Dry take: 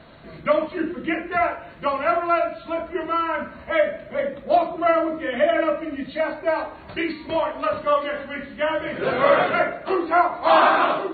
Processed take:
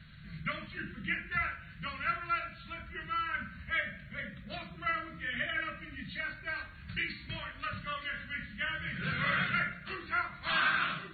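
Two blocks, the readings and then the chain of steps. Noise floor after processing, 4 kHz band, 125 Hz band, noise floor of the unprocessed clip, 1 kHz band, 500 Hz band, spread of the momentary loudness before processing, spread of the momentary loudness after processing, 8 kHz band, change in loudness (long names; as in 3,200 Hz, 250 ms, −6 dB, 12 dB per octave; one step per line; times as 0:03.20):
−50 dBFS, −5.0 dB, −0.5 dB, −42 dBFS, −16.0 dB, −28.0 dB, 10 LU, 12 LU, can't be measured, −12.5 dB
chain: drawn EQ curve 180 Hz 0 dB, 290 Hz −23 dB, 550 Hz −28 dB, 870 Hz −30 dB, 1,500 Hz −5 dB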